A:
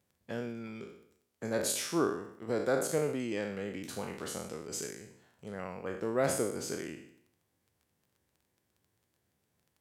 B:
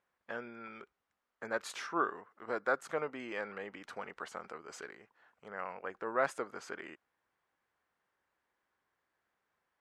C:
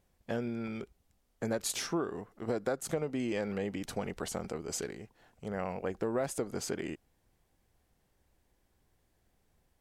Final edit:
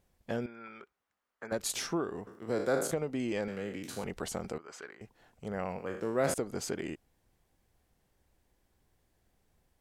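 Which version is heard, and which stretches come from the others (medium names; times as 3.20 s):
C
0.46–1.52 s: from B
2.27–2.91 s: from A
3.48–4.04 s: from A
4.58–5.01 s: from B
5.78–6.34 s: from A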